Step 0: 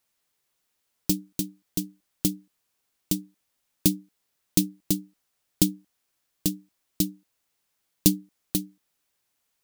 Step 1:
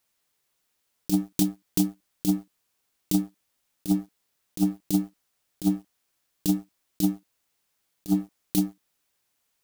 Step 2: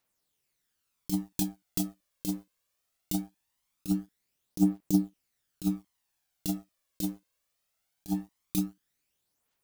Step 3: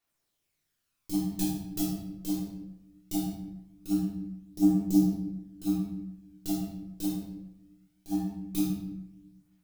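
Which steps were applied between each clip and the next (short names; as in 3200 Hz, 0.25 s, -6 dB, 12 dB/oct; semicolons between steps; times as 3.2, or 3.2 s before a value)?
dynamic EQ 760 Hz, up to +5 dB, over -44 dBFS, Q 0.77; negative-ratio compressor -27 dBFS, ratio -0.5; sample leveller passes 2
phaser 0.21 Hz, delay 2 ms, feedback 50%; gain -6 dB
shoebox room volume 310 m³, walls mixed, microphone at 3.4 m; gain -8.5 dB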